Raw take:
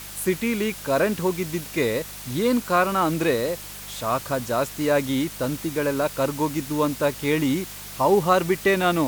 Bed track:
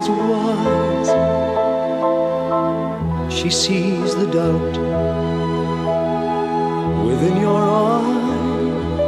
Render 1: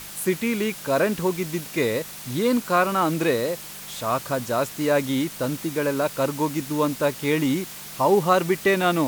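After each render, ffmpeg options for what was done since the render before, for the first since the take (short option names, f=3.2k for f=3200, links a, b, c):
-af "bandreject=f=50:t=h:w=4,bandreject=f=100:t=h:w=4"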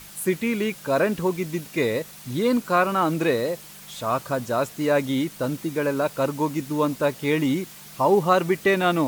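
-af "afftdn=nr=6:nf=-38"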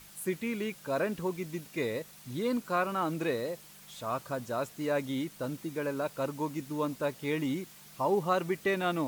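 -af "volume=-9.5dB"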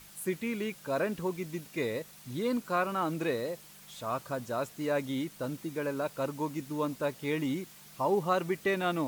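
-af anull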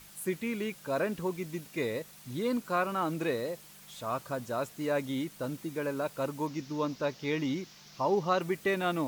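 -filter_complex "[0:a]asettb=1/sr,asplit=3[a][b][c];[a]atrim=end=6.474[d];[b]atrim=start=6.47:end=8.41,asetpts=PTS-STARTPTS,afade=t=in:d=0.004:c=qsin,afade=t=out:st=1.936:d=0.004:c=qsin,highshelf=f=7.1k:t=q:w=3:g=-9[e];[c]atrim=start=8.406[f];[d][e]acrossfade=d=0.004:c1=hsin:c2=qsin[g];[g][f]acrossfade=d=0.004:c1=qsin:c2=hsin"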